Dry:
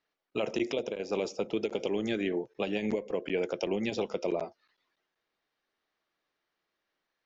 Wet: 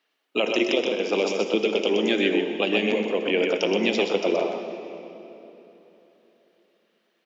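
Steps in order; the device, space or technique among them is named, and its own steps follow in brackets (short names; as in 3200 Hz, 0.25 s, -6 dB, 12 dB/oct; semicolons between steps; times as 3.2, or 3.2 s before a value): PA in a hall (HPF 200 Hz 24 dB/oct; bell 2900 Hz +7.5 dB 0.64 oct; echo 0.125 s -5 dB; reverb RT60 3.5 s, pre-delay 44 ms, DRR 7.5 dB); gain +7 dB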